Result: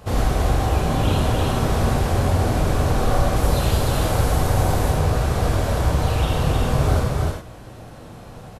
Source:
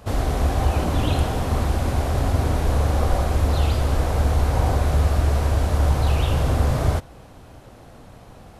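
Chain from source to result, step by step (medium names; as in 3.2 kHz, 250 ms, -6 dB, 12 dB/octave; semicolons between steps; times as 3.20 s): delay 312 ms -3.5 dB; gain riding 0.5 s; 3.36–4.90 s: treble shelf 8 kHz +8.5 dB; gated-style reverb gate 130 ms flat, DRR 0 dB; trim -1.5 dB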